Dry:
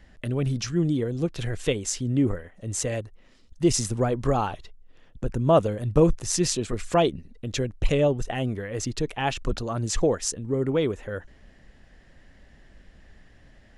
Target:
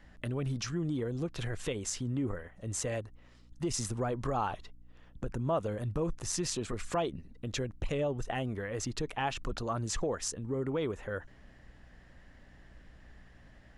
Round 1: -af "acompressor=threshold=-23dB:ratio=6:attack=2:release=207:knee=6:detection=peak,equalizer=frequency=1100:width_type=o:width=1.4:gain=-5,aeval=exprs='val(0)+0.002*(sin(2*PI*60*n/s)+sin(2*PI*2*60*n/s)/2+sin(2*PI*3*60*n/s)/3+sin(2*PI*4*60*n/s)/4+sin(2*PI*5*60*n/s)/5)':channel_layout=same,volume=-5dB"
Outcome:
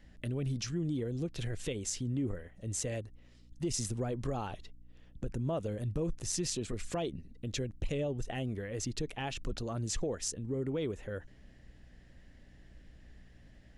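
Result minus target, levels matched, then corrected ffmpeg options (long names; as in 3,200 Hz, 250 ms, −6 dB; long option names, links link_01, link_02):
1,000 Hz band −6.5 dB
-af "acompressor=threshold=-23dB:ratio=6:attack=2:release=207:knee=6:detection=peak,equalizer=frequency=1100:width_type=o:width=1.4:gain=5.5,aeval=exprs='val(0)+0.002*(sin(2*PI*60*n/s)+sin(2*PI*2*60*n/s)/2+sin(2*PI*3*60*n/s)/3+sin(2*PI*4*60*n/s)/4+sin(2*PI*5*60*n/s)/5)':channel_layout=same,volume=-5dB"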